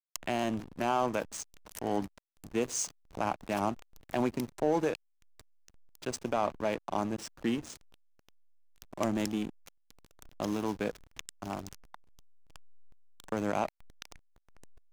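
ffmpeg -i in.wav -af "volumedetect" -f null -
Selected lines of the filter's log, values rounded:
mean_volume: -35.7 dB
max_volume: -15.1 dB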